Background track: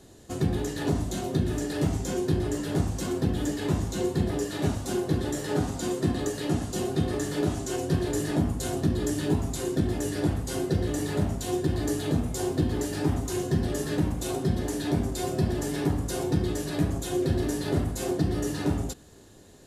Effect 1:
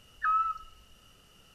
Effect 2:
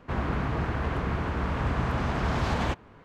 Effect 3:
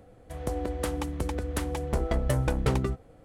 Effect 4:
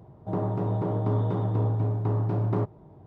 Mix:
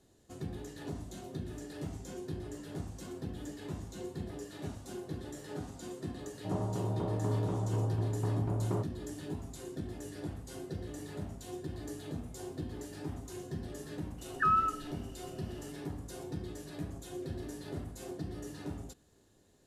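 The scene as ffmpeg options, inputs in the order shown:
-filter_complex "[0:a]volume=-14.5dB[a];[4:a]atrim=end=3.06,asetpts=PTS-STARTPTS,volume=-7dB,afade=t=in:d=0.004:c=hsin,afade=t=out:st=3.056:d=0.004:c=hsin,adelay=272538S[b];[1:a]atrim=end=1.54,asetpts=PTS-STARTPTS,afade=t=in:d=0.004:c=hsin,afade=t=out:st=1.536:d=0.004:c=hsin,adelay=14180[c];[a][b][c]amix=inputs=3:normalize=0"

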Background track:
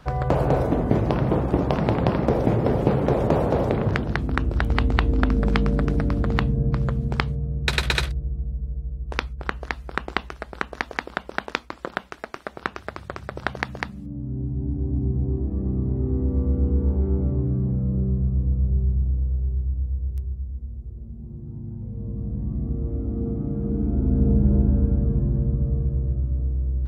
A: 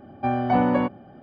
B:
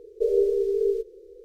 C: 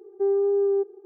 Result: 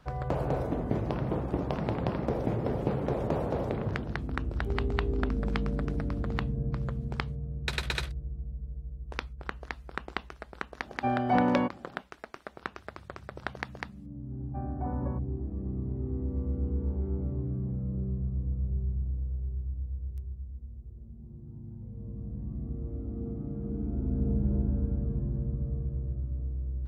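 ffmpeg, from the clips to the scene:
-filter_complex "[1:a]asplit=2[a][b];[0:a]volume=-9.5dB[c];[b]lowpass=f=1.4k:w=0.5412,lowpass=f=1.4k:w=1.3066[d];[3:a]atrim=end=1.05,asetpts=PTS-STARTPTS,volume=-16.5dB,afade=t=in:d=0.004:c=hsin,afade=t=out:st=1.046:d=0.004:c=hsin,adelay=4460[e];[a]atrim=end=1.22,asetpts=PTS-STARTPTS,volume=-4.5dB,afade=t=in:d=0.004:c=hsin,afade=t=out:st=1.216:d=0.004:c=hsin,adelay=10800[f];[d]atrim=end=1.22,asetpts=PTS-STARTPTS,volume=-17.5dB,afade=t=in:d=0.004:c=hsin,afade=t=out:st=1.216:d=0.004:c=hsin,adelay=14310[g];[c][e][f][g]amix=inputs=4:normalize=0"

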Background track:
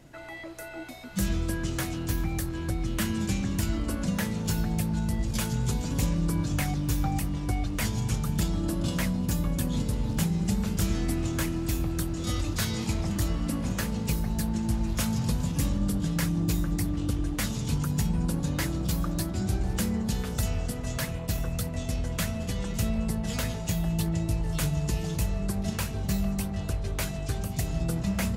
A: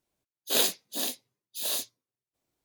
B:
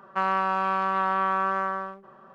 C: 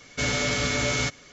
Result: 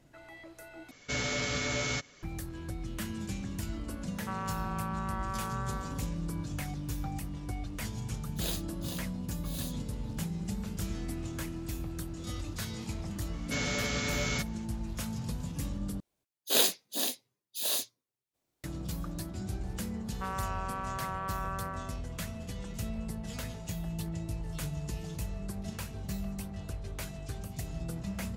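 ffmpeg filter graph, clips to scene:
-filter_complex "[3:a]asplit=2[a][b];[2:a]asplit=2[c][d];[1:a]asplit=2[e][f];[0:a]volume=-9dB,asplit=3[g][h][i];[g]atrim=end=0.914[j];[a]atrim=end=1.32,asetpts=PTS-STARTPTS,volume=-7dB[k];[h]atrim=start=2.226:end=16.004[l];[f]atrim=end=2.64,asetpts=PTS-STARTPTS,volume=-0.5dB[m];[i]atrim=start=18.636[n];[c]atrim=end=2.34,asetpts=PTS-STARTPTS,volume=-13.5dB,afade=t=in:d=0.004:c=hsin,afade=t=out:st=2.336:d=0.004:c=hsin,adelay=4110[o];[e]atrim=end=2.64,asetpts=PTS-STARTPTS,volume=-12.5dB,afade=t=in:d=0.004:c=hsin,afade=t=out:st=2.636:d=0.004:c=hsin,adelay=7890[p];[b]atrim=end=1.32,asetpts=PTS-STARTPTS,volume=-7.5dB,afade=t=in:d=0.004:c=hsin,afade=t=out:st=1.316:d=0.004:c=hsin,adelay=13330[q];[d]atrim=end=2.34,asetpts=PTS-STARTPTS,volume=-12.5dB,afade=t=in:d=0.004:c=hsin,afade=t=out:st=2.336:d=0.004:c=hsin,adelay=20050[r];[j][k]acrossfade=d=0.004:c1=hsin:c2=hsin[s];[s][l]acrossfade=d=0.004:c1=hsin:c2=hsin[t];[t][m]acrossfade=d=0.004:c1=hsin:c2=hsin[u];[u][n]acrossfade=d=0.004:c1=hsin:c2=hsin[v];[v][o][p][q][r]amix=inputs=5:normalize=0"

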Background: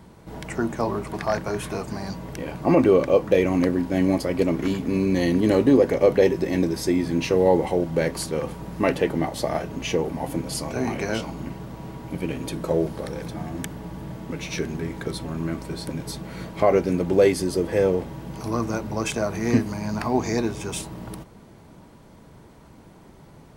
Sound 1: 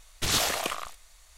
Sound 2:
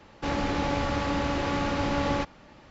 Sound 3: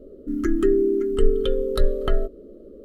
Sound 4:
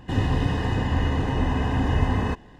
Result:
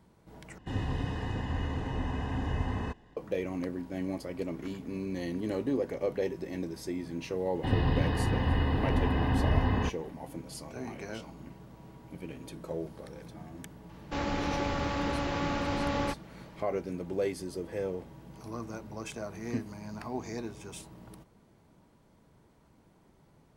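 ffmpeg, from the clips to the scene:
-filter_complex "[4:a]asplit=2[a][b];[0:a]volume=-14dB[c];[b]aresample=11025,aresample=44100[d];[c]asplit=2[e][f];[e]atrim=end=0.584[g];[a]atrim=end=2.59,asetpts=PTS-STARTPTS,volume=-10dB[h];[f]atrim=start=3.166[i];[d]atrim=end=2.59,asetpts=PTS-STARTPTS,volume=-4.5dB,afade=t=in:d=0.004:c=hsin,afade=t=out:st=2.586:d=0.004:c=hsin,adelay=7550[j];[2:a]atrim=end=2.7,asetpts=PTS-STARTPTS,volume=-4dB,afade=t=in:d=0.004:c=hsin,afade=t=out:st=2.696:d=0.004:c=hsin,adelay=13890[k];[g][h]acrossfade=d=0.004:c1=hsin:c2=hsin[l];[l][i]acrossfade=d=0.004:c1=hsin:c2=hsin[m];[m][j][k]amix=inputs=3:normalize=0"

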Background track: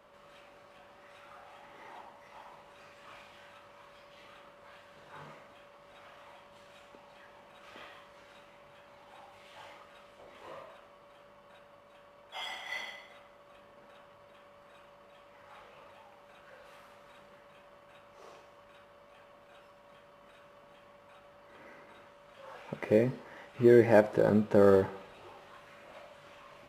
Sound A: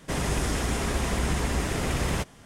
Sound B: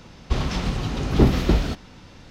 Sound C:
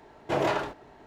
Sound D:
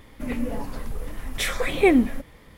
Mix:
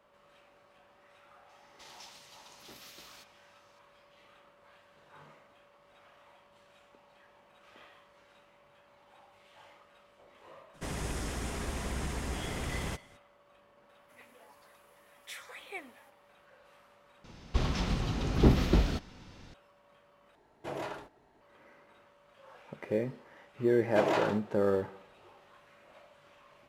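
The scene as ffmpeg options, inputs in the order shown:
-filter_complex "[2:a]asplit=2[a][b];[3:a]asplit=2[c][d];[0:a]volume=-6dB[e];[a]aderivative[f];[4:a]highpass=840[g];[c]equalizer=f=11k:t=o:w=0.62:g=9.5[h];[d]highpass=160[i];[e]asplit=3[j][k][l];[j]atrim=end=17.244[m];[b]atrim=end=2.3,asetpts=PTS-STARTPTS,volume=-6.5dB[n];[k]atrim=start=19.536:end=20.354[o];[h]atrim=end=1.06,asetpts=PTS-STARTPTS,volume=-12.5dB[p];[l]atrim=start=21.406[q];[f]atrim=end=2.3,asetpts=PTS-STARTPTS,volume=-12dB,afade=t=in:d=0.004:c=hsin,afade=t=out:st=2.296:d=0.004:c=hsin,adelay=1490[r];[1:a]atrim=end=2.45,asetpts=PTS-STARTPTS,volume=-9.5dB,afade=t=in:d=0.02,afade=t=out:st=2.43:d=0.02,adelay=10730[s];[g]atrim=end=2.57,asetpts=PTS-STARTPTS,volume=-18dB,afade=t=in:d=0.004:c=hsin,afade=t=out:st=2.566:d=0.004:c=hsin,adelay=13890[t];[i]atrim=end=1.06,asetpts=PTS-STARTPTS,volume=-3dB,afade=t=in:d=0.004:c=hsin,afade=t=out:st=1.056:d=0.004:c=hsin,adelay=23660[u];[m][n]acrossfade=d=0.004:c1=hsin:c2=hsin[v];[v][o]acrossfade=d=0.004:c1=hsin:c2=hsin[w];[w][p]acrossfade=d=0.004:c1=hsin:c2=hsin[x];[x][q]acrossfade=d=0.004:c1=hsin:c2=hsin[y];[y][r][s][t][u]amix=inputs=5:normalize=0"

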